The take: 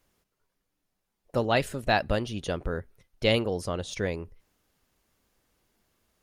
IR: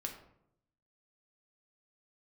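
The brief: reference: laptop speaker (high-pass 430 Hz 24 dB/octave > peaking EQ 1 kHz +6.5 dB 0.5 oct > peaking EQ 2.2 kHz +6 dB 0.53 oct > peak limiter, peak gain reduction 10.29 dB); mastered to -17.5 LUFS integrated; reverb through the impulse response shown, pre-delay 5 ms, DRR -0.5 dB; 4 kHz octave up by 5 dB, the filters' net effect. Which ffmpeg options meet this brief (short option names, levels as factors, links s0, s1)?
-filter_complex "[0:a]equalizer=f=4000:t=o:g=5,asplit=2[s0][s1];[1:a]atrim=start_sample=2205,adelay=5[s2];[s1][s2]afir=irnorm=-1:irlink=0,volume=1.19[s3];[s0][s3]amix=inputs=2:normalize=0,highpass=f=430:w=0.5412,highpass=f=430:w=1.3066,equalizer=f=1000:t=o:w=0.5:g=6.5,equalizer=f=2200:t=o:w=0.53:g=6,volume=3.55,alimiter=limit=0.596:level=0:latency=1"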